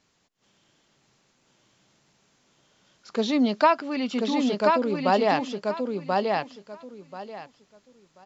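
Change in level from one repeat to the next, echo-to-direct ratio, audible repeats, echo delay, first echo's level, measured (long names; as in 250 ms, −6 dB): −14.0 dB, −3.0 dB, 3, 1,035 ms, −3.0 dB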